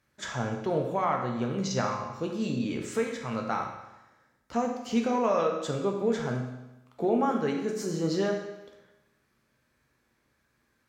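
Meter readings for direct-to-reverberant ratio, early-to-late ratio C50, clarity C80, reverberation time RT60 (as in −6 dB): 1.0 dB, 4.5 dB, 7.0 dB, 1.0 s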